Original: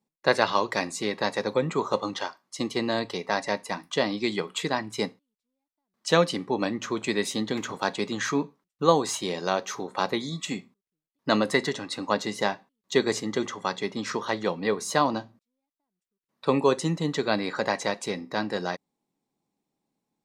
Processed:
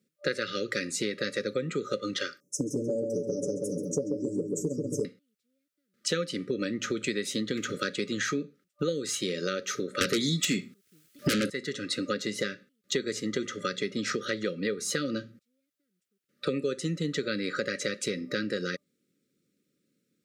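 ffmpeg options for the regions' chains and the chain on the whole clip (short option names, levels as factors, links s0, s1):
-filter_complex "[0:a]asettb=1/sr,asplit=3[s0][s1][s2];[s0]atrim=end=2.404[s3];[s1]atrim=start=2.4:end=5.05,asetpts=PTS-STARTPTS,afade=t=in:d=0.004:c=qsin,afade=t=out:st=2.646:d=0.004:c=qsin,asuperstop=centerf=2400:order=20:qfactor=0.51,aecho=1:1:6.9:0.74,atrim=end_sample=116865,asplit=2[s4][s5];[s5]adelay=135,lowpass=f=2800:p=1,volume=0.631,asplit=2[s6][s7];[s7]adelay=135,lowpass=f=2800:p=1,volume=0.49,asplit=2[s8][s9];[s9]adelay=135,lowpass=f=2800:p=1,volume=0.49,asplit=2[s10][s11];[s11]adelay=135,lowpass=f=2800:p=1,volume=0.49,asplit=2[s12][s13];[s13]adelay=135,lowpass=f=2800:p=1,volume=0.49,asplit=2[s14][s15];[s15]adelay=135,lowpass=f=2800:p=1,volume=0.49[s16];[s4][s6][s8][s10][s12][s14][s16]amix=inputs=7:normalize=0,atrim=end_sample=116865[s17];[s2]atrim=start=5.046[s18];[s3][s17]acrossfade=d=0.004:c1=hsin:c2=qsin[s19];[s19][s18]acrossfade=d=0.004:c1=qsin:c2=hsin,asettb=1/sr,asplit=3[s20][s21][s22];[s20]atrim=end=10.014[s23];[s21]atrim=start=10.01:end=11.5,asetpts=PTS-STARTPTS,afade=t=in:d=0.004:c=qsin,afade=t=out:st=1.486:d=0.004:c=qsin,highshelf=f=3400:g=4,bandreject=f=510:w=8.2,aeval=exprs='0.562*sin(PI/2*7.08*val(0)/0.562)':c=same[s24];[s22]atrim=start=11.496[s25];[s23][s24]acrossfade=d=0.004:c1=hsin:c2=qsin[s26];[s26][s25]acrossfade=d=0.004:c1=qsin:c2=hsin,highpass=78,afftfilt=real='re*(1-between(b*sr/4096,590,1200))':imag='im*(1-between(b*sr/4096,590,1200))':win_size=4096:overlap=0.75,acompressor=threshold=0.02:ratio=6,volume=2.11"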